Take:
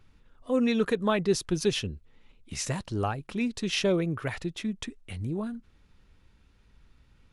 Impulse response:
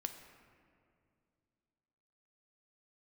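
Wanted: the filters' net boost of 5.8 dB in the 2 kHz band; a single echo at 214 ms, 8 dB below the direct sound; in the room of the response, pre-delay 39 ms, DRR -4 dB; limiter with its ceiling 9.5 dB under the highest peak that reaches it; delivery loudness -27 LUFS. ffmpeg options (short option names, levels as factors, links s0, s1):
-filter_complex "[0:a]equalizer=f=2000:t=o:g=7.5,alimiter=limit=0.0794:level=0:latency=1,aecho=1:1:214:0.398,asplit=2[s0][s1];[1:a]atrim=start_sample=2205,adelay=39[s2];[s1][s2]afir=irnorm=-1:irlink=0,volume=1.88[s3];[s0][s3]amix=inputs=2:normalize=0,volume=0.944"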